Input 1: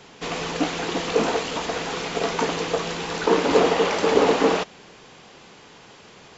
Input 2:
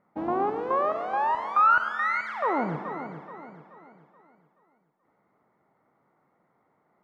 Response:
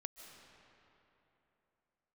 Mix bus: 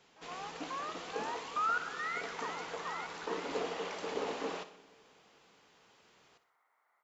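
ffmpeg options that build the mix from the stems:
-filter_complex "[0:a]volume=-18.5dB,asplit=3[a][b][c];[b]volume=-11.5dB[d];[c]volume=-11.5dB[e];[1:a]highpass=1.2k,dynaudnorm=f=140:g=3:m=9.5dB,volume=-8dB,afade=t=in:st=2.6:d=0.34:silence=0.281838[f];[2:a]atrim=start_sample=2205[g];[d][g]afir=irnorm=-1:irlink=0[h];[e]aecho=0:1:61|122|183|244|305|366|427:1|0.5|0.25|0.125|0.0625|0.0312|0.0156[i];[a][f][h][i]amix=inputs=4:normalize=0,lowshelf=f=360:g=-6"

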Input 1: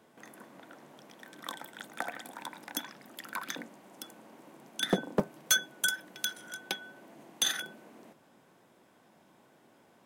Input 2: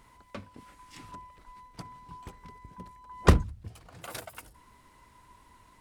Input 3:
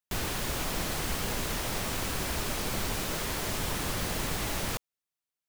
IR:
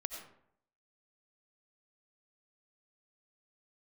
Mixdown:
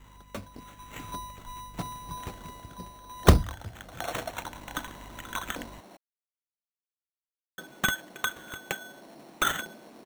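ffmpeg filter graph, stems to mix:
-filter_complex "[0:a]adelay=2000,volume=-3dB,asplit=3[a][b][c];[a]atrim=end=5.97,asetpts=PTS-STARTPTS,afade=t=out:st=5.966:d=0.004:c=hsin[d];[b]atrim=start=5.97:end=7.58,asetpts=PTS-STARTPTS,volume=0[e];[c]atrim=start=7.58,asetpts=PTS-STARTPTS,afade=t=in:d=0.004:c=hsin[f];[d][e][f]concat=n=3:v=0:a=1[g];[1:a]aeval=exprs='val(0)+0.00141*(sin(2*PI*50*n/s)+sin(2*PI*2*50*n/s)/2+sin(2*PI*3*50*n/s)/3+sin(2*PI*4*50*n/s)/4+sin(2*PI*5*50*n/s)/5)':c=same,volume=2.5dB[h];[g][h]amix=inputs=2:normalize=0,adynamicequalizer=threshold=0.002:dfrequency=670:dqfactor=3.5:tfrequency=670:tqfactor=3.5:attack=5:release=100:ratio=0.375:range=2.5:mode=boostabove:tftype=bell,dynaudnorm=f=150:g=13:m=6dB,acrusher=samples=9:mix=1:aa=0.000001"

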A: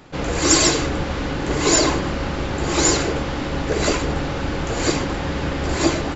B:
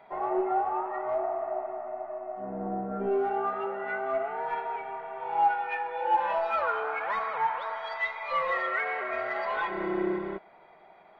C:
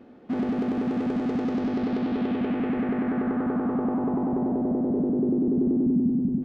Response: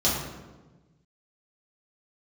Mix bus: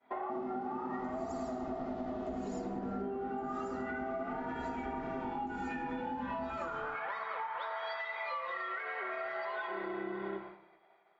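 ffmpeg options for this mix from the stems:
-filter_complex "[0:a]acrossover=split=170[a][b];[b]acompressor=threshold=-40dB:ratio=2[c];[a][c]amix=inputs=2:normalize=0,asplit=2[d][e];[e]adelay=2.8,afreqshift=-1.2[f];[d][f]amix=inputs=2:normalize=1,adelay=800,volume=-15.5dB[g];[1:a]lowpass=3.6k,tiltshelf=f=800:g=-9,acompressor=threshold=-29dB:ratio=6,volume=0dB,asplit=2[h][i];[i]volume=-20dB[j];[2:a]alimiter=limit=-24dB:level=0:latency=1,flanger=delay=19:depth=4:speed=2.1,volume=-13dB,asplit=2[k][l];[l]volume=-15dB[m];[g][h]amix=inputs=2:normalize=0,equalizer=f=380:w=3.1:g=11,acompressor=threshold=-34dB:ratio=6,volume=0dB[n];[3:a]atrim=start_sample=2205[o];[j][m]amix=inputs=2:normalize=0[p];[p][o]afir=irnorm=-1:irlink=0[q];[k][n][q]amix=inputs=3:normalize=0,agate=range=-33dB:threshold=-41dB:ratio=3:detection=peak,acompressor=threshold=-35dB:ratio=6"

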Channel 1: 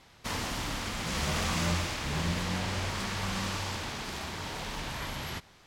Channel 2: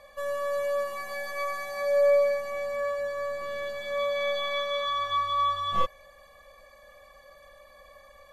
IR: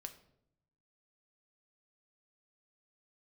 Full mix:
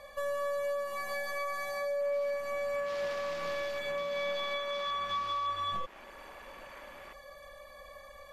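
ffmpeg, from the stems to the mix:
-filter_complex "[0:a]highpass=320,afwtdn=0.0112,adelay=1750,volume=-11dB,afade=t=in:st=2.64:d=0.27:silence=0.398107[a];[1:a]acompressor=threshold=-37dB:ratio=2,volume=2dB[b];[a][b]amix=inputs=2:normalize=0,alimiter=level_in=3dB:limit=-24dB:level=0:latency=1:release=153,volume=-3dB"

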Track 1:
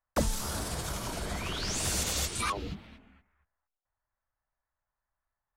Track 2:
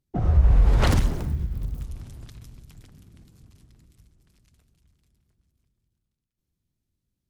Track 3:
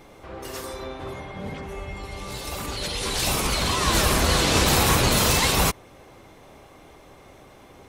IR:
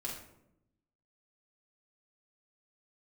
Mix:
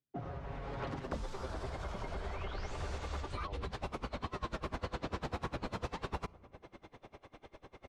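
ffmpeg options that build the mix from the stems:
-filter_complex "[0:a]asubboost=boost=10.5:cutoff=100,adelay=950,volume=-3.5dB[a];[1:a]highpass=f=320:p=1,aecho=1:1:7.3:0.58,volume=-9.5dB[b];[2:a]aeval=exprs='val(0)*pow(10,-29*(0.5-0.5*cos(2*PI*10*n/s))/20)':c=same,adelay=550,volume=-1.5dB,asplit=2[c][d];[d]volume=-22.5dB[e];[3:a]atrim=start_sample=2205[f];[e][f]afir=irnorm=-1:irlink=0[g];[a][b][c][g]amix=inputs=4:normalize=0,lowpass=4.2k,acrossover=split=310|1600[h][i][j];[h]acompressor=threshold=-41dB:ratio=4[k];[i]acompressor=threshold=-41dB:ratio=4[l];[j]acompressor=threshold=-56dB:ratio=4[m];[k][l][m]amix=inputs=3:normalize=0"

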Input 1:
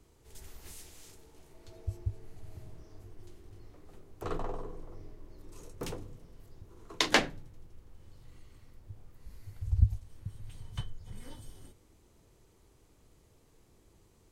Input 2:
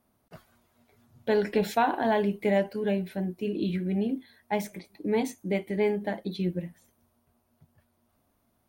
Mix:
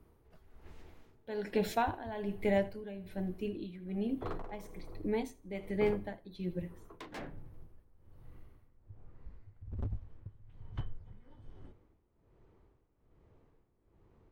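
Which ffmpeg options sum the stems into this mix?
-filter_complex "[0:a]lowpass=1.7k,volume=31dB,asoftclip=hard,volume=-31dB,volume=0.5dB[a];[1:a]volume=-5dB,asplit=2[b][c];[c]volume=-18.5dB,aecho=0:1:81|162|243|324|405:1|0.33|0.109|0.0359|0.0119[d];[a][b][d]amix=inputs=3:normalize=0,tremolo=f=1.2:d=0.78"

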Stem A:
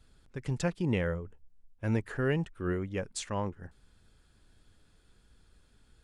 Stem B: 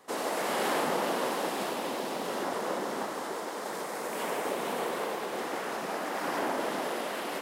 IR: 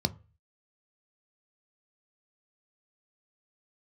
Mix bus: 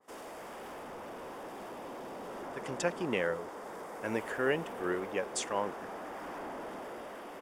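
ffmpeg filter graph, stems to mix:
-filter_complex "[0:a]highpass=370,adelay=2200,volume=-2dB[a];[1:a]asoftclip=type=tanh:threshold=-33dB,adynamicequalizer=threshold=0.002:dfrequency=2000:dqfactor=0.7:tfrequency=2000:tqfactor=0.7:attack=5:release=100:ratio=0.375:range=4:mode=cutabove:tftype=highshelf,volume=-9dB[b];[a][b]amix=inputs=2:normalize=0,dynaudnorm=f=470:g=7:m=4.5dB,bandreject=f=4.1k:w=6.9"

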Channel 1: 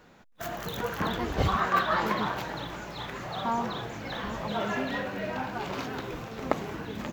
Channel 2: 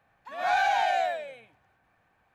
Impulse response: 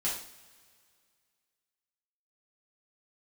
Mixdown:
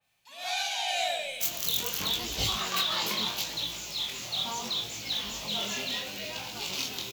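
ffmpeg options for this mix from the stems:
-filter_complex "[0:a]flanger=delay=17.5:depth=7.5:speed=0.74,adelay=1000,volume=-6dB[a];[1:a]adynamicequalizer=threshold=0.00794:dfrequency=2900:dqfactor=0.7:tfrequency=2900:tqfactor=0.7:attack=5:release=100:ratio=0.375:range=2.5:mode=cutabove:tftype=highshelf,volume=-5.5dB,afade=t=in:st=0.84:d=0.42:silence=0.281838,asplit=2[b][c];[c]volume=-4.5dB[d];[2:a]atrim=start_sample=2205[e];[d][e]afir=irnorm=-1:irlink=0[f];[a][b][f]amix=inputs=3:normalize=0,aexciter=amount=9.5:drive=6.5:freq=2.5k"

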